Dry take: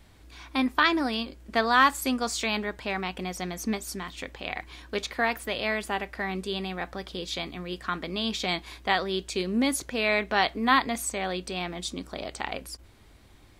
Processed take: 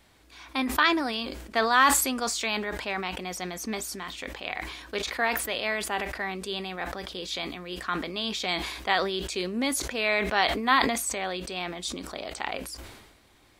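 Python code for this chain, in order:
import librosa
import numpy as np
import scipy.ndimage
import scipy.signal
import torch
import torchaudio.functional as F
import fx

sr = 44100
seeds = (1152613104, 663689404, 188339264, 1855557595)

y = fx.low_shelf(x, sr, hz=200.0, db=-11.5)
y = fx.sustainer(y, sr, db_per_s=49.0)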